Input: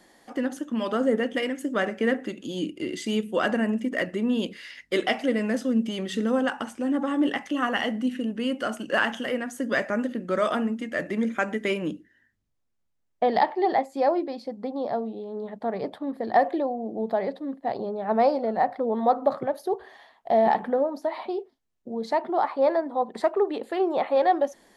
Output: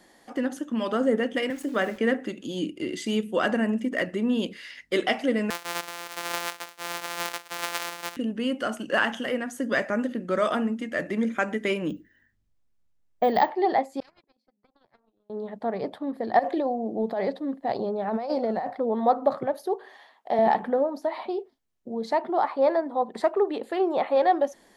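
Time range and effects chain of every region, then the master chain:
1.50–1.98 s: high-pass 130 Hz 24 dB/octave + hum notches 50/100/150/200/250/300/350 Hz + small samples zeroed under -43.5 dBFS
5.50–8.17 s: sorted samples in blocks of 256 samples + high-pass 840 Hz
11.89–13.49 s: bass shelf 94 Hz +9 dB + careless resampling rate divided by 2×, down filtered, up hold
14.00–15.30 s: compression 5:1, threshold -35 dBFS + gate -33 dBFS, range -59 dB + spectrum-flattening compressor 4:1
16.39–18.71 s: dynamic bell 5.7 kHz, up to +4 dB, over -48 dBFS, Q 0.86 + compressor with a negative ratio -26 dBFS
19.66–20.39 s: high-pass 250 Hz + band-stop 680 Hz, Q 13
whole clip: none

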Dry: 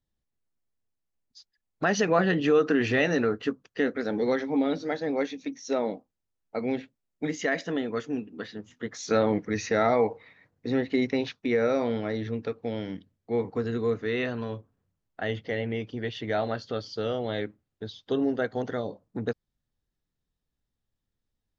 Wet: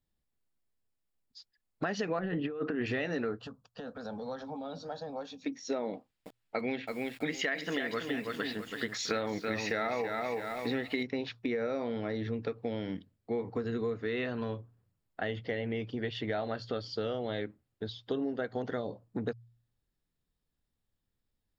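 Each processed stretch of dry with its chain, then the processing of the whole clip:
2.19–2.86 s: compressor with a negative ratio -25 dBFS, ratio -0.5 + distance through air 370 m
3.39–5.42 s: compression 5:1, threshold -29 dBFS + static phaser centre 850 Hz, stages 4
5.93–11.03 s: peaking EQ 2.7 kHz +10 dB 2.3 oct + bit-crushed delay 328 ms, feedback 35%, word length 8-bit, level -7 dB
whole clip: de-hum 58.63 Hz, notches 2; compression, threshold -30 dBFS; band-stop 6.1 kHz, Q 6.8

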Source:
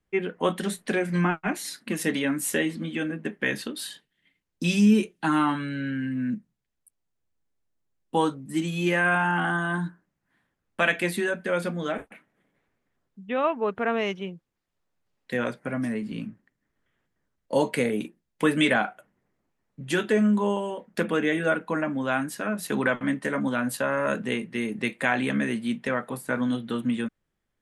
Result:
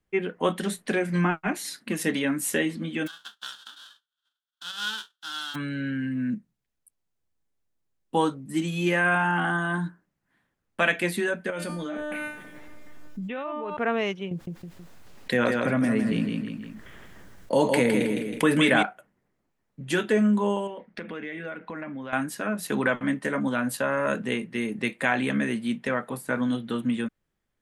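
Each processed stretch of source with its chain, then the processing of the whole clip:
3.06–5.54 s: formants flattened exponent 0.1 + two resonant band-passes 2.2 kHz, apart 1.2 oct
11.50–13.77 s: feedback comb 300 Hz, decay 0.56 s, mix 90% + level flattener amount 100%
14.31–18.83 s: feedback delay 160 ms, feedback 28%, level -7 dB + level flattener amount 50%
20.67–22.13 s: peaking EQ 2.1 kHz +7 dB 0.41 oct + compression 4:1, threshold -34 dBFS + Savitzky-Golay filter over 15 samples
whole clip: none

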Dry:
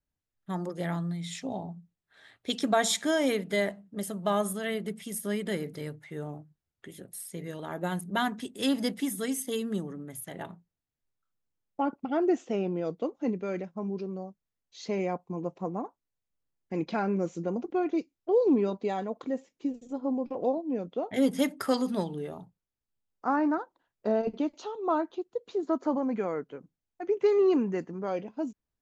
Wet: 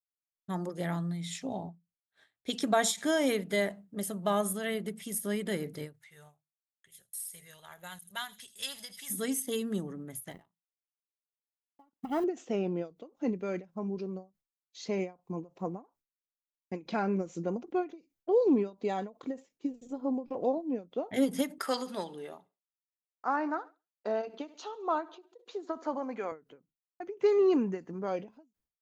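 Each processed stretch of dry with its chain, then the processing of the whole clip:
5.93–9.10 s: amplifier tone stack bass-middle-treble 10-0-10 + feedback echo behind a high-pass 81 ms, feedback 30%, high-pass 4.8 kHz, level -10 dB
10.31–12.24 s: companding laws mixed up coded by A + comb 1 ms, depth 42%
21.58–26.32 s: frequency weighting A + feedback delay 69 ms, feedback 56%, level -21.5 dB
whole clip: expander -52 dBFS; treble shelf 9.4 kHz +6.5 dB; endings held to a fixed fall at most 240 dB/s; trim -1.5 dB

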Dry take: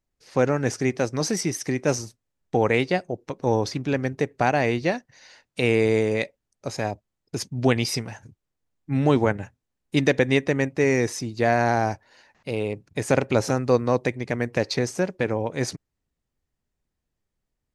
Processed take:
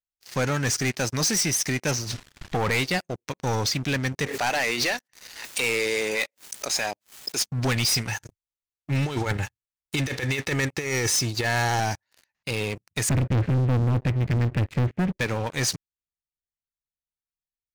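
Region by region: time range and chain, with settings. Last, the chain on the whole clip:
1.91–2.75 s: low-pass 3.7 kHz + swell ahead of each attack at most 36 dB/s
4.26–7.48 s: high-pass 340 Hz + swell ahead of each attack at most 94 dB/s
8.08–11.80 s: comb 2.3 ms, depth 42% + compressor with a negative ratio -22 dBFS, ratio -0.5
13.09–15.17 s: low-pass 2.9 kHz 24 dB/octave + tilt EQ -4.5 dB/octave + static phaser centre 2.2 kHz, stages 4
whole clip: amplifier tone stack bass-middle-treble 5-5-5; waveshaping leveller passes 5

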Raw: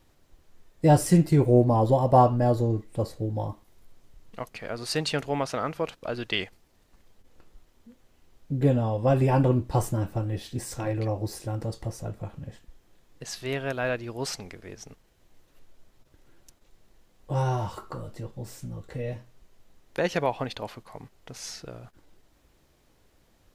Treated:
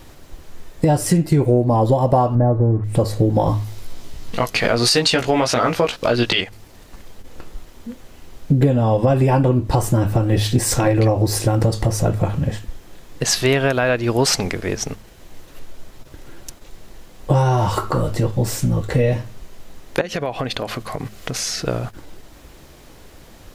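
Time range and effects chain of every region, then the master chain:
2.35–2.84 s: zero-crossing glitches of -28 dBFS + low-pass 1.4 kHz 24 dB/octave + peaking EQ 90 Hz +5.5 dB 1.4 oct
3.46–6.41 s: peaking EQ 4.5 kHz +5 dB 1.4 oct + doubling 17 ms -3 dB
20.01–21.65 s: band-stop 900 Hz, Q 5.7 + compression 5:1, threshold -40 dBFS + tape noise reduction on one side only encoder only
whole clip: de-hum 105.4 Hz, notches 2; compression 16:1, threshold -31 dBFS; loudness maximiser +23.5 dB; trim -4 dB

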